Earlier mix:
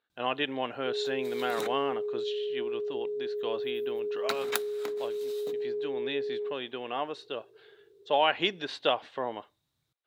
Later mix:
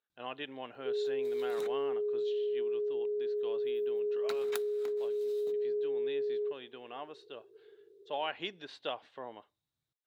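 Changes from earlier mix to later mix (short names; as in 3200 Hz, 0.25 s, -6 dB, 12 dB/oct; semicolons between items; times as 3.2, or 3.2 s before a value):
speech -11.0 dB; second sound -10.0 dB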